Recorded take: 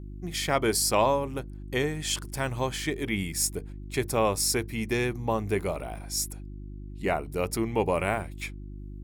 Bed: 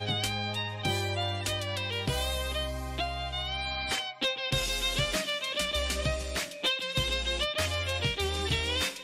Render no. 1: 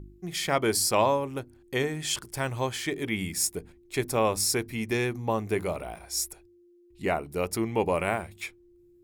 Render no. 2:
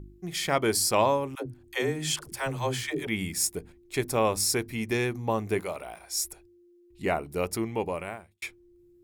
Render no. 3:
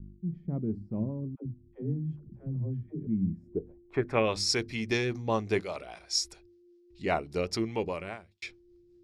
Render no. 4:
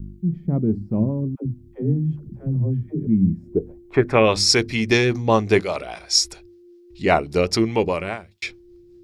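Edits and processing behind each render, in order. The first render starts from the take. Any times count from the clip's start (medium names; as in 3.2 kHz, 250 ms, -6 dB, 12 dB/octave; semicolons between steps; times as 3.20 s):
de-hum 50 Hz, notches 6
1.35–3.07 s: phase dispersion lows, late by 114 ms, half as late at 320 Hz; 5.60–6.25 s: bass shelf 340 Hz -11.5 dB; 7.45–8.42 s: fade out
rotary cabinet horn 5 Hz; low-pass sweep 200 Hz -> 5 kHz, 3.38–4.44 s
trim +11.5 dB; peak limiter -2 dBFS, peak gain reduction 2.5 dB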